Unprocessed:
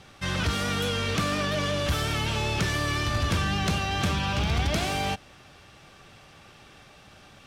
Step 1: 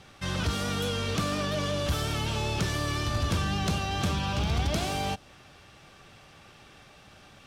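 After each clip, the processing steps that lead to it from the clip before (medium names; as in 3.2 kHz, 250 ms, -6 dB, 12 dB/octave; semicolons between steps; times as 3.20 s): dynamic bell 2 kHz, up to -5 dB, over -43 dBFS, Q 1.3; trim -1.5 dB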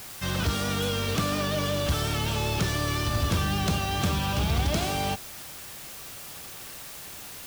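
added noise white -44 dBFS; trim +2 dB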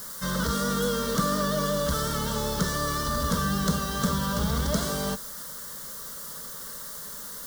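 static phaser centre 500 Hz, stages 8; trim +4 dB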